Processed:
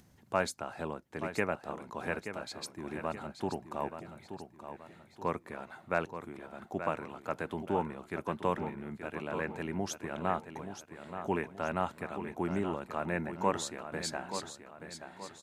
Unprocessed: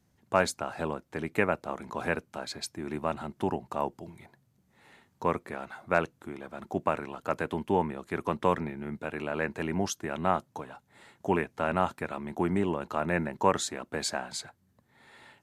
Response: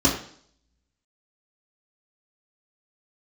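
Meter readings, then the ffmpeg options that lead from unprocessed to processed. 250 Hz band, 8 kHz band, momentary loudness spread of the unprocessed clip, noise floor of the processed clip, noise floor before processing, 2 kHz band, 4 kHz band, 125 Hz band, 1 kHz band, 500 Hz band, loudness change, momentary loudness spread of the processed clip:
-5.0 dB, -5.0 dB, 11 LU, -60 dBFS, -70 dBFS, -5.0 dB, -5.0 dB, -5.0 dB, -5.0 dB, -5.0 dB, -5.5 dB, 13 LU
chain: -af "aecho=1:1:878|1756|2634|3512:0.335|0.137|0.0563|0.0231,acompressor=mode=upward:threshold=0.00501:ratio=2.5,volume=0.531"

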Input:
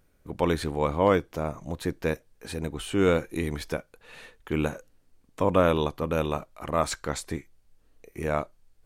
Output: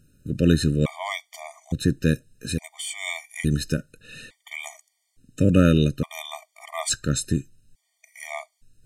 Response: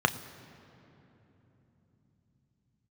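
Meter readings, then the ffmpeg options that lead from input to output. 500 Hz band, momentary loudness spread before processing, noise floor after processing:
-3.5 dB, 15 LU, -74 dBFS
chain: -af "equalizer=f=125:t=o:w=1:g=11,equalizer=f=250:t=o:w=1:g=6,equalizer=f=500:t=o:w=1:g=-4,equalizer=f=1000:t=o:w=1:g=-11,equalizer=f=2000:t=o:w=1:g=4,equalizer=f=4000:t=o:w=1:g=4,equalizer=f=8000:t=o:w=1:g=10,afftfilt=real='re*gt(sin(2*PI*0.58*pts/sr)*(1-2*mod(floor(b*sr/1024/610),2)),0)':imag='im*gt(sin(2*PI*0.58*pts/sr)*(1-2*mod(floor(b*sr/1024/610),2)),0)':win_size=1024:overlap=0.75,volume=1.5"

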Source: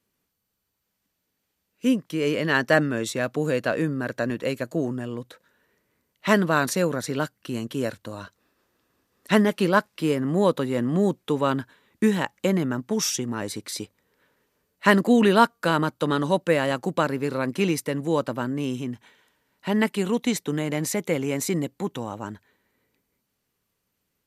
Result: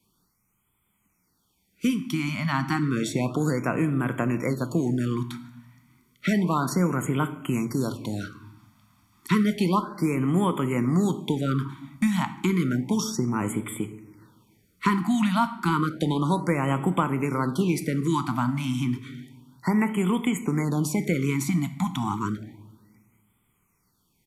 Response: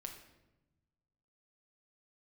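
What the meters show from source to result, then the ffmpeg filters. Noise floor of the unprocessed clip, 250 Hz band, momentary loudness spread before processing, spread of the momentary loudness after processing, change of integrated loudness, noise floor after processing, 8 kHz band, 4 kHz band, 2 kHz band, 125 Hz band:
-78 dBFS, +0.5 dB, 12 LU, 7 LU, -1.5 dB, -71 dBFS, -4.0 dB, -4.5 dB, -5.5 dB, +3.5 dB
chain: -filter_complex "[0:a]aecho=1:1:0.9:0.67,acrossover=split=95|1300[s0][s1][s2];[s0]acompressor=threshold=0.002:ratio=4[s3];[s1]acompressor=threshold=0.0398:ratio=4[s4];[s2]acompressor=threshold=0.01:ratio=4[s5];[s3][s4][s5]amix=inputs=3:normalize=0,asplit=2[s6][s7];[1:a]atrim=start_sample=2205[s8];[s7][s8]afir=irnorm=-1:irlink=0,volume=1.68[s9];[s6][s9]amix=inputs=2:normalize=0,afftfilt=real='re*(1-between(b*sr/1024,410*pow(5100/410,0.5+0.5*sin(2*PI*0.31*pts/sr))/1.41,410*pow(5100/410,0.5+0.5*sin(2*PI*0.31*pts/sr))*1.41))':imag='im*(1-between(b*sr/1024,410*pow(5100/410,0.5+0.5*sin(2*PI*0.31*pts/sr))/1.41,410*pow(5100/410,0.5+0.5*sin(2*PI*0.31*pts/sr))*1.41))':win_size=1024:overlap=0.75"

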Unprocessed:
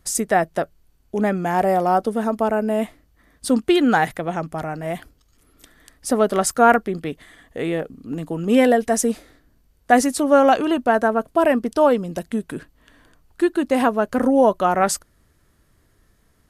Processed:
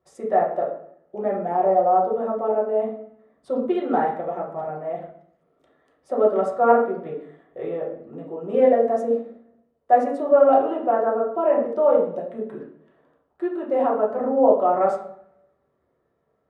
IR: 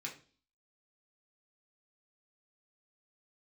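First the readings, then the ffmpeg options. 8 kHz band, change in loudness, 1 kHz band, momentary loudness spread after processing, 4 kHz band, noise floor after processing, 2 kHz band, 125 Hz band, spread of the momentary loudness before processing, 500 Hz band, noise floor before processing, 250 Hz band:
under -30 dB, -2.0 dB, -1.5 dB, 17 LU, under -20 dB, -70 dBFS, -13.5 dB, -11.5 dB, 14 LU, +0.5 dB, -61 dBFS, -8.0 dB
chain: -filter_complex "[0:a]bandpass=f=520:t=q:w=2.2:csg=0[s0];[1:a]atrim=start_sample=2205,asetrate=23373,aresample=44100[s1];[s0][s1]afir=irnorm=-1:irlink=0"

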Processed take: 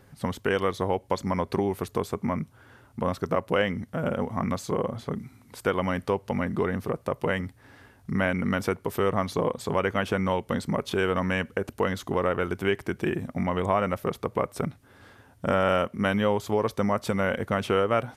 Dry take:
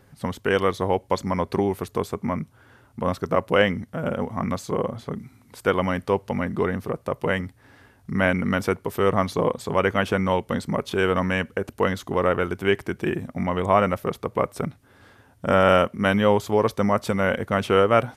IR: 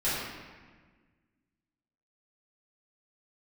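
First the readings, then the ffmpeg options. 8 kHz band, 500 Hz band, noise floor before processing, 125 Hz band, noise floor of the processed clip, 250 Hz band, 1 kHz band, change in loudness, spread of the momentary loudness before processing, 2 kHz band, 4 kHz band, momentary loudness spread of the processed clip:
-2.0 dB, -4.5 dB, -56 dBFS, -3.0 dB, -57 dBFS, -3.0 dB, -4.5 dB, -4.0 dB, 9 LU, -4.5 dB, -4.0 dB, 7 LU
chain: -af "acompressor=threshold=0.0631:ratio=2"

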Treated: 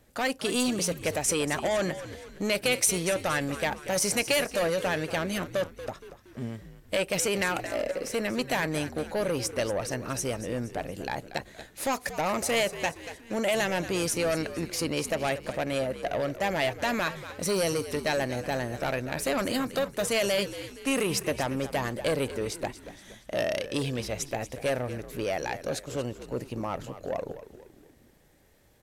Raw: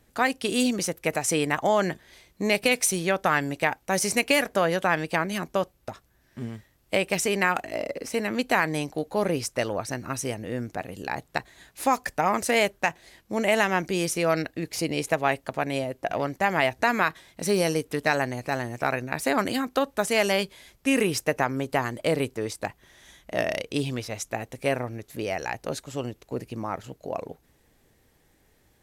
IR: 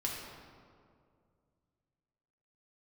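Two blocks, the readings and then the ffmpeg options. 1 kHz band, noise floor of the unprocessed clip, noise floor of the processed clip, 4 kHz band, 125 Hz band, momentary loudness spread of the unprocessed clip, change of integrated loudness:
-6.0 dB, -64 dBFS, -55 dBFS, -0.5 dB, -2.0 dB, 11 LU, -3.0 dB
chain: -filter_complex "[0:a]equalizer=f=560:w=4:g=5.5,acrossover=split=2700[s0][s1];[s0]asoftclip=type=tanh:threshold=0.0668[s2];[s2][s1]amix=inputs=2:normalize=0,asplit=6[s3][s4][s5][s6][s7][s8];[s4]adelay=234,afreqshift=-75,volume=0.224[s9];[s5]adelay=468,afreqshift=-150,volume=0.105[s10];[s6]adelay=702,afreqshift=-225,volume=0.0495[s11];[s7]adelay=936,afreqshift=-300,volume=0.0232[s12];[s8]adelay=1170,afreqshift=-375,volume=0.011[s13];[s3][s9][s10][s11][s12][s13]amix=inputs=6:normalize=0"

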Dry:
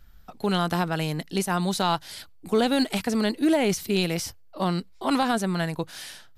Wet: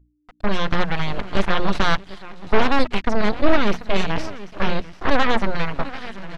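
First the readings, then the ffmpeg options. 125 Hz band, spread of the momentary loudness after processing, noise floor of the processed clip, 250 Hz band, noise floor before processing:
+1.0 dB, 10 LU, -57 dBFS, 0.0 dB, -49 dBFS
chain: -filter_complex "[0:a]afftfilt=real='re*gte(hypot(re,im),0.0158)':imag='im*gte(hypot(re,im),0.0158)':win_size=1024:overlap=0.75,asplit=2[s0][s1];[s1]aecho=0:1:628|739:0.1|0.211[s2];[s0][s2]amix=inputs=2:normalize=0,aeval=exprs='0.316*(cos(1*acos(clip(val(0)/0.316,-1,1)))-cos(1*PI/2))+0.0316*(cos(3*acos(clip(val(0)/0.316,-1,1)))-cos(3*PI/2))+0.126*(cos(6*acos(clip(val(0)/0.316,-1,1)))-cos(6*PI/2))+0.002*(cos(7*acos(clip(val(0)/0.316,-1,1)))-cos(7*PI/2))':c=same,acrusher=bits=6:mix=0:aa=0.000001,aeval=exprs='val(0)+0.00282*(sin(2*PI*60*n/s)+sin(2*PI*2*60*n/s)/2+sin(2*PI*3*60*n/s)/3+sin(2*PI*4*60*n/s)/4+sin(2*PI*5*60*n/s)/5)':c=same,lowshelf=f=100:g=9.5,dynaudnorm=f=120:g=11:m=5.96,lowpass=2500,tiltshelf=f=720:g=-3,bandreject=f=60:t=h:w=6,bandreject=f=120:t=h:w=6,bandreject=f=180:t=h:w=6,bandreject=f=240:t=h:w=6"

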